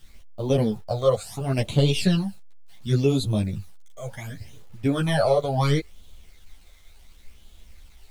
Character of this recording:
phaser sweep stages 12, 0.7 Hz, lowest notch 270–1,800 Hz
a quantiser's noise floor 10 bits, dither none
a shimmering, thickened sound

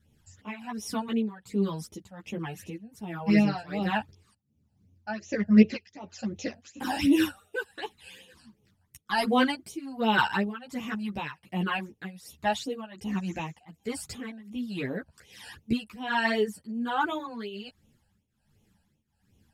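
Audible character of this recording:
phaser sweep stages 12, 2.7 Hz, lowest notch 350–1,600 Hz
tremolo triangle 1.3 Hz, depth 90%
a shimmering, thickened sound

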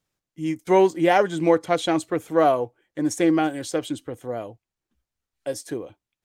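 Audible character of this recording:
background noise floor −88 dBFS
spectral slope −4.5 dB per octave

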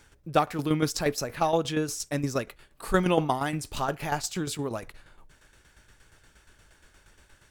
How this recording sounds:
tremolo saw down 8.5 Hz, depth 65%

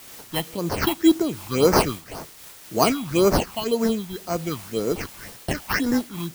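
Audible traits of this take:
aliases and images of a low sample rate 3,600 Hz, jitter 0%
phaser sweep stages 6, 1.9 Hz, lowest notch 420–3,300 Hz
a quantiser's noise floor 8 bits, dither triangular
amplitude modulation by smooth noise

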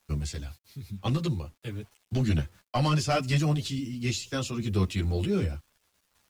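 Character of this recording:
a quantiser's noise floor 10 bits, dither none
tremolo saw down 0.65 Hz, depth 35%
a shimmering, thickened sound

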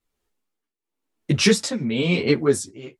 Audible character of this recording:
tremolo triangle 0.98 Hz, depth 90%
a shimmering, thickened sound

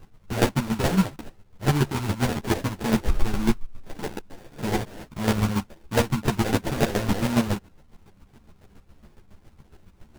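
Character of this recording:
chopped level 7.2 Hz, depth 65%, duty 25%
phaser sweep stages 6, 2.9 Hz, lowest notch 450–1,500 Hz
aliases and images of a low sample rate 1,200 Hz, jitter 20%
a shimmering, thickened sound

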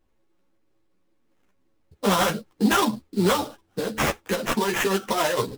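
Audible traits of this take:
aliases and images of a low sample rate 4,500 Hz, jitter 20%
a shimmering, thickened sound

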